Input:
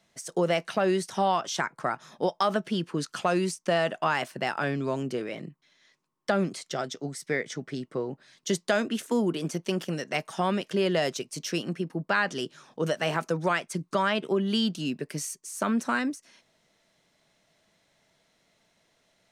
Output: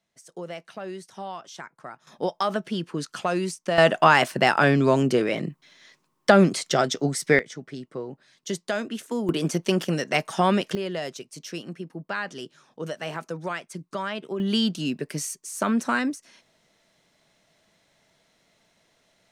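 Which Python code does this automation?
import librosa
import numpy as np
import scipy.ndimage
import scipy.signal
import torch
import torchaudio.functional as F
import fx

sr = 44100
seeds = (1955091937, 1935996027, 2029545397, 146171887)

y = fx.gain(x, sr, db=fx.steps((0.0, -11.0), (2.07, 0.0), (3.78, 10.0), (7.39, -2.5), (9.29, 6.0), (10.75, -5.0), (14.4, 3.0)))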